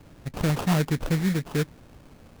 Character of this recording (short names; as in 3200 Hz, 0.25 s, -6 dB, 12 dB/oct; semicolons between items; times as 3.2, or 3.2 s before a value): aliases and images of a low sample rate 2000 Hz, jitter 20%